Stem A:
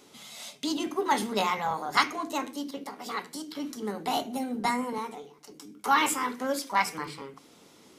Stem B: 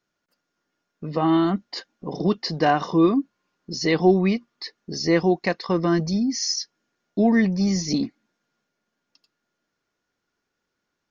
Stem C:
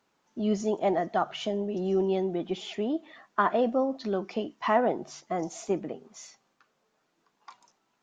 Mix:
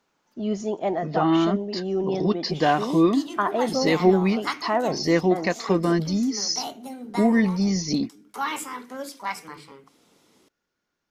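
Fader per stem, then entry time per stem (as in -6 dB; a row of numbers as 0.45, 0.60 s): -5.0, -1.0, +0.5 dB; 2.50, 0.00, 0.00 s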